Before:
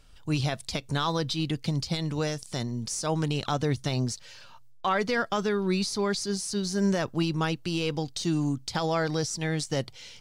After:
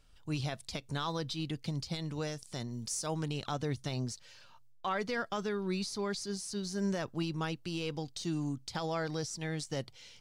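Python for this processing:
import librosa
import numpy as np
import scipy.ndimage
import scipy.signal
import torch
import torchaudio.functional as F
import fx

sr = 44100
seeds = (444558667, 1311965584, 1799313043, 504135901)

y = fx.high_shelf(x, sr, hz=fx.line((2.7, 5100.0), (3.14, 8100.0)), db=8.0, at=(2.7, 3.14), fade=0.02)
y = F.gain(torch.from_numpy(y), -8.0).numpy()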